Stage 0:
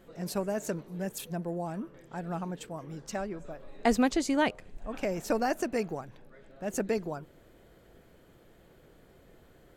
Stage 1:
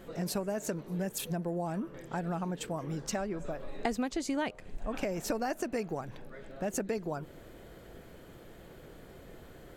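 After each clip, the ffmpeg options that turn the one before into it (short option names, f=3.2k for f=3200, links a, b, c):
-af "acompressor=threshold=-39dB:ratio=4,volume=7dB"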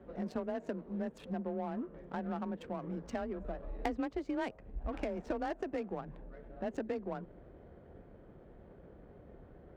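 -af "afreqshift=26,adynamicsmooth=sensitivity=4.5:basefreq=1.1k,volume=-3.5dB"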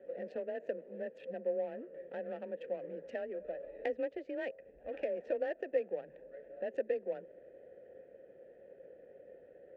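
-filter_complex "[0:a]asplit=3[a][b][c];[a]bandpass=f=530:t=q:w=8,volume=0dB[d];[b]bandpass=f=1.84k:t=q:w=8,volume=-6dB[e];[c]bandpass=f=2.48k:t=q:w=8,volume=-9dB[f];[d][e][f]amix=inputs=3:normalize=0,volume=10dB"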